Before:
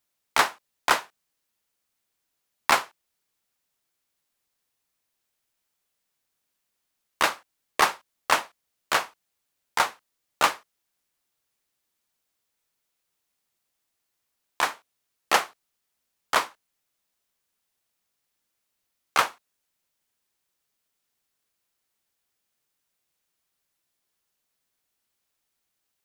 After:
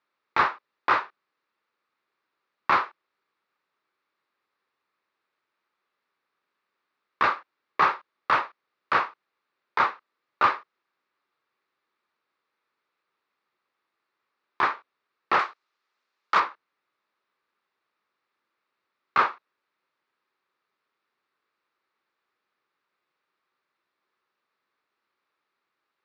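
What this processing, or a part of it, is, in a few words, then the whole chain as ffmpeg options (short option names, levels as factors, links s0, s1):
overdrive pedal into a guitar cabinet: -filter_complex "[0:a]asplit=2[s0][s1];[s1]highpass=f=720:p=1,volume=11.2,asoftclip=type=tanh:threshold=0.562[s2];[s0][s2]amix=inputs=2:normalize=0,lowpass=f=1700:p=1,volume=0.501,highpass=92,equalizer=f=370:t=q:w=4:g=5,equalizer=f=700:t=q:w=4:g=-6,equalizer=f=1200:t=q:w=4:g=6,equalizer=f=3100:t=q:w=4:g=-7,lowpass=f=4200:w=0.5412,lowpass=f=4200:w=1.3066,asettb=1/sr,asplit=3[s3][s4][s5];[s3]atrim=end=15.394[s6];[s4]atrim=start=15.39:end=16.4,asetpts=PTS-STARTPTS,afade=t=in:d=0.004:c=qsin,afade=t=out:st=1.006:d=0.004:c=qsin,aemphasis=mode=production:type=bsi[s7];[s5]atrim=start=16.396[s8];[s6][s7]acrossfade=d=0.004:c1=hsin:c2=qsin[s9];[s9][s8]acrossfade=d=0.004:c1=qsin:c2=hsin,volume=0.501"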